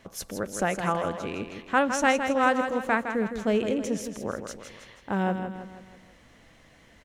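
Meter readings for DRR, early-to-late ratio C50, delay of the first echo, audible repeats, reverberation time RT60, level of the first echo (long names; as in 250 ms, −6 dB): no reverb audible, no reverb audible, 161 ms, 5, no reverb audible, −8.0 dB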